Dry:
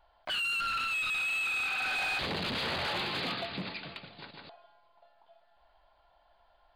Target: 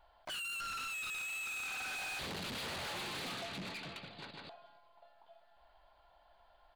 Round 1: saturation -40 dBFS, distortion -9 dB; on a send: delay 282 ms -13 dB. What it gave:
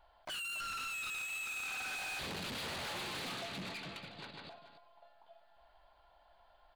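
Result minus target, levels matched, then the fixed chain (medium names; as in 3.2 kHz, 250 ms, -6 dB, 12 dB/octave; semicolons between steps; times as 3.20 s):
echo-to-direct +11.5 dB
saturation -40 dBFS, distortion -9 dB; on a send: delay 282 ms -24.5 dB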